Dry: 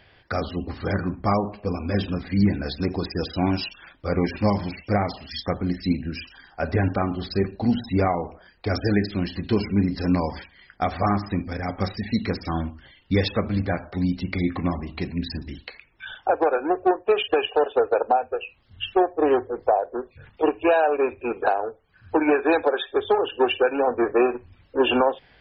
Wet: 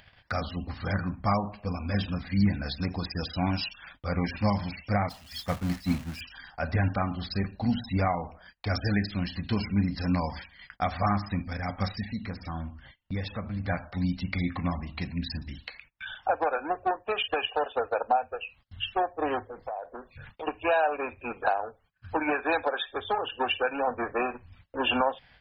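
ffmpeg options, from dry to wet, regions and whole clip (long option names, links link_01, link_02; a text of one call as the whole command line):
ffmpeg -i in.wav -filter_complex "[0:a]asettb=1/sr,asplit=3[link_01][link_02][link_03];[link_01]atrim=end=5.094[link_04];[link_02]atrim=start=5.09:end=6.21,asetpts=PTS-STARTPTS,afade=type=in:duration=0.004:curve=qsin,afade=type=out:start_time=1.116:duration=0.004:curve=qsin,aeval=exprs='val(0)+0.5*0.0447*sgn(val(0))':channel_layout=same,agate=range=-33dB:threshold=-21dB:ratio=3:release=100:detection=peak[link_05];[link_03]atrim=start=6.206[link_06];[link_04][link_05]acrossfade=duration=0.004:curve1=hsin:curve2=qsin[link_07];[link_07][link_06]acrossfade=duration=0.004:curve1=qsin:curve2=hsin,asettb=1/sr,asplit=3[link_08][link_09][link_10];[link_08]atrim=end=12.054[link_11];[link_09]atrim=start=12.05:end=13.65,asetpts=PTS-STARTPTS,afade=type=in:duration=0.004:curve=qsin,afade=type=out:start_time=1.596:duration=0.004:curve=qsin,highshelf=frequency=2900:gain=-10.5,acompressor=threshold=-34dB:ratio=1.5:attack=3.2:release=140:knee=1:detection=peak[link_12];[link_10]atrim=start=13.646[link_13];[link_11][link_12]acrossfade=duration=0.004:curve1=hsin:curve2=qsin[link_14];[link_14][link_13]acrossfade=duration=0.004:curve1=qsin:curve2=hsin,asettb=1/sr,asplit=3[link_15][link_16][link_17];[link_15]atrim=end=19.444[link_18];[link_16]atrim=start=19.44:end=20.47,asetpts=PTS-STARTPTS,afade=type=in:duration=0.004:curve=qsin,afade=type=out:start_time=1.026:duration=0.004:curve=qsin,equalizer=frequency=80:width_type=o:width=1.5:gain=-4,acompressor=threshold=-26dB:ratio=6:attack=3.2:release=140:knee=1:detection=peak[link_19];[link_17]atrim=start=20.466[link_20];[link_18][link_19]acrossfade=duration=0.004:curve1=hsin:curve2=qsin[link_21];[link_21][link_20]acrossfade=duration=0.004:curve1=qsin:curve2=hsin,agate=range=-29dB:threshold=-51dB:ratio=16:detection=peak,equalizer=frequency=380:width=1.8:gain=-13.5,acompressor=mode=upward:threshold=-35dB:ratio=2.5,volume=-2dB" out.wav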